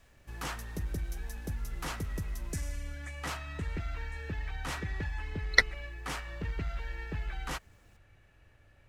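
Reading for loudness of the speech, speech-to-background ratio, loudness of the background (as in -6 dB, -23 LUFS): -27.0 LUFS, 12.0 dB, -39.0 LUFS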